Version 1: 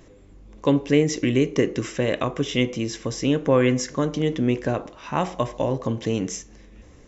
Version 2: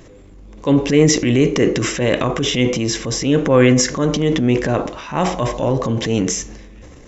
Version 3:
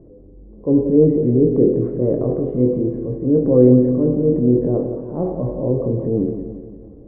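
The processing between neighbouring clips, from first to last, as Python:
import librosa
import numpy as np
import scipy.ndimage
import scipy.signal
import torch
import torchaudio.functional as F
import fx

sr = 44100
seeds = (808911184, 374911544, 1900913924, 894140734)

y1 = fx.transient(x, sr, attack_db=-7, sustain_db=7)
y1 = F.gain(torch.from_numpy(y1), 7.0).numpy()
y2 = fx.ladder_lowpass(y1, sr, hz=590.0, resonance_pct=30)
y2 = fx.doubler(y2, sr, ms=24.0, db=-8)
y2 = fx.echo_feedback(y2, sr, ms=175, feedback_pct=52, wet_db=-9)
y2 = F.gain(torch.from_numpy(y2), 3.5).numpy()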